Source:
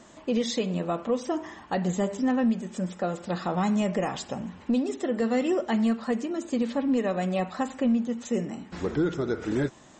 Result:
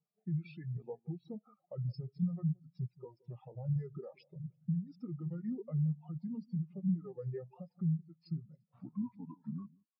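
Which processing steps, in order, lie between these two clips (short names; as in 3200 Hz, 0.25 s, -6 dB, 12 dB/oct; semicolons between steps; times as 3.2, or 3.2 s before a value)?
HPF 200 Hz 24 dB/oct; reverb removal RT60 1.2 s; bell 430 Hz -11.5 dB 1.1 oct; limiter -25 dBFS, peak gain reduction 6 dB; compressor 12:1, threshold -36 dBFS, peak gain reduction 9 dB; soft clip -27.5 dBFS, distortion -27 dB; pitch shift -6.5 st; on a send: echo with dull and thin repeats by turns 0.172 s, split 1000 Hz, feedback 52%, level -10 dB; on the sum: spectral expander 2.5:1; gain +5 dB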